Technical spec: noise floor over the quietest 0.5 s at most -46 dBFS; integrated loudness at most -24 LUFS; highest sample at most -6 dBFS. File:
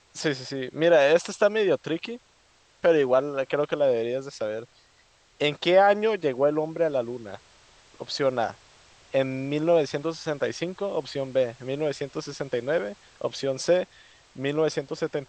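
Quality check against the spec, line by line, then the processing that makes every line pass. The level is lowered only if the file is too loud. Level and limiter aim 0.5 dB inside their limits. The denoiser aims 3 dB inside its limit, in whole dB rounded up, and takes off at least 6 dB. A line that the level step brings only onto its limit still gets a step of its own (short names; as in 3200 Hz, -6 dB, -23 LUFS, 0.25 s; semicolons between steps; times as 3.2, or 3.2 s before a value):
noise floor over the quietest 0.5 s -61 dBFS: OK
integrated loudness -25.5 LUFS: OK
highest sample -8.0 dBFS: OK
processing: none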